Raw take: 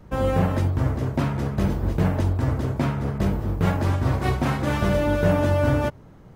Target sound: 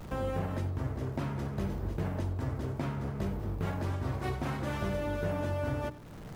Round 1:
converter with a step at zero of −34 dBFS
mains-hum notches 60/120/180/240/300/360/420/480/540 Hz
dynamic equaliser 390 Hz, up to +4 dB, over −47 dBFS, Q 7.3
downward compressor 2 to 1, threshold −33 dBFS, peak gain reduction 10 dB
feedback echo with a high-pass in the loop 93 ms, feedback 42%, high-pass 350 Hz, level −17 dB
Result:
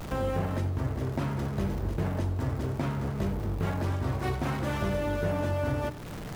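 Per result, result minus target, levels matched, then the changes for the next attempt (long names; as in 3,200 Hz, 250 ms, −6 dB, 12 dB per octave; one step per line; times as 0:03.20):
converter with a step at zero: distortion +9 dB; downward compressor: peak gain reduction −3.5 dB
change: converter with a step at zero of −44 dBFS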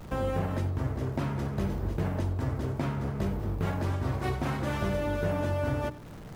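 downward compressor: peak gain reduction −3.5 dB
change: downward compressor 2 to 1, threshold −40 dBFS, peak gain reduction 13.5 dB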